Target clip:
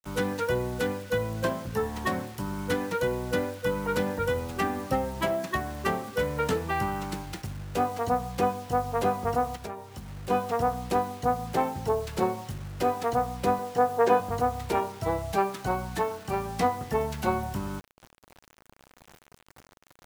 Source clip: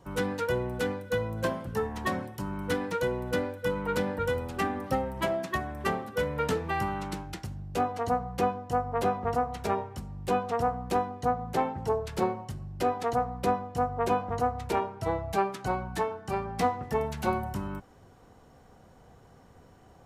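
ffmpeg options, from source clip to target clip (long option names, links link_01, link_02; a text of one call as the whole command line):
ffmpeg -i in.wav -filter_complex "[0:a]asettb=1/sr,asplit=3[link_01][link_02][link_03];[link_01]atrim=end=13.594[link_04];[link_02]atrim=start=13.59:end=14.2,asetpts=PTS-STARTPTS,afade=type=in:duration=0.004:curve=qsin,afade=type=out:start_time=0.606:duration=0.004:curve=qsin,highpass=frequency=120:width=0.5412,highpass=frequency=120:width=1.3066,equalizer=frequency=150:width_type=q:width=4:gain=-8,equalizer=frequency=450:width_type=q:width=4:gain=8,equalizer=frequency=840:width_type=q:width=4:gain=5,equalizer=frequency=1700:width_type=q:width=4:gain=8,lowpass=frequency=7900:width=0.5412,lowpass=frequency=7900:width=1.3066[link_05];[link_03]atrim=start=14.196[link_06];[link_04][link_05]acrossfade=duration=0.004:curve1=hsin:curve2=qsin[link_07];[link_07][link_06]acrossfade=duration=0.004:curve1=qsin:curve2=hsin,acrusher=bits=7:mix=0:aa=0.000001,asplit=3[link_08][link_09][link_10];[link_08]afade=type=out:start_time=9.55:duration=0.02[link_11];[link_09]acompressor=threshold=-38dB:ratio=4,afade=type=in:start_time=9.55:duration=0.02,afade=type=out:start_time=10.29:duration=0.02[link_12];[link_10]afade=type=in:start_time=10.29:duration=0.02[link_13];[link_11][link_12][link_13]amix=inputs=3:normalize=0,volume=1.5dB" out.wav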